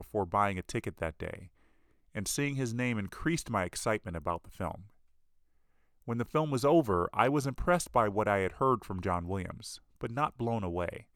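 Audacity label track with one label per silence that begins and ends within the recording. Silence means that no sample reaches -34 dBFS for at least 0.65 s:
1.350000	2.170000	silence
4.750000	6.080000	silence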